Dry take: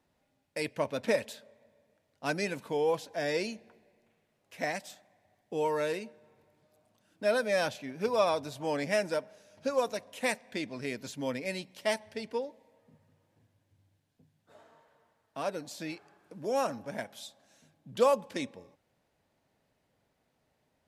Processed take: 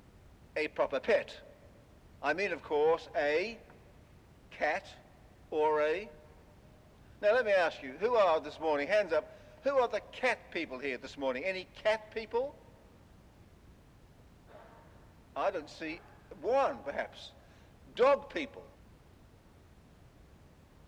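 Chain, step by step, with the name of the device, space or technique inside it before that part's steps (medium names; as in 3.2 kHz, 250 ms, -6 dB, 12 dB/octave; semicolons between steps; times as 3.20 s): aircraft cabin announcement (band-pass 410–3000 Hz; saturation -23 dBFS, distortion -16 dB; brown noise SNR 16 dB); high-pass 60 Hz; trim +3.5 dB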